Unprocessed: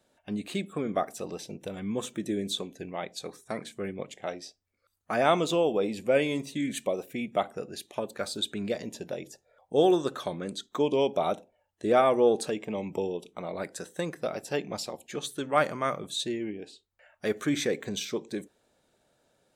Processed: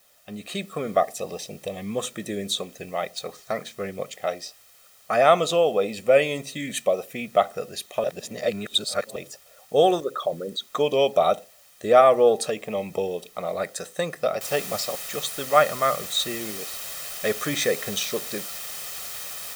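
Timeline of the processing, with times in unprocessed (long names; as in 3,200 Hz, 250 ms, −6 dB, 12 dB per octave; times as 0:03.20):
0:01.00–0:01.90: Butterworth band-reject 1,400 Hz, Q 3
0:02.99–0:04.05: linearly interpolated sample-rate reduction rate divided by 3×
0:08.04–0:09.16: reverse
0:10.00–0:10.65: spectral envelope exaggerated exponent 2
0:14.41: noise floor change −61 dB −42 dB
whole clip: automatic gain control gain up to 6 dB; low-shelf EQ 240 Hz −7.5 dB; comb filter 1.6 ms, depth 56%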